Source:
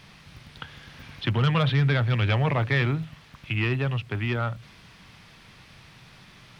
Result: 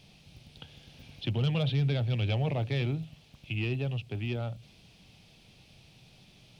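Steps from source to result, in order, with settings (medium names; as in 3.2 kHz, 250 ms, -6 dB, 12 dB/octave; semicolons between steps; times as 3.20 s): high-order bell 1.4 kHz -13.5 dB 1.3 oct; trim -5.5 dB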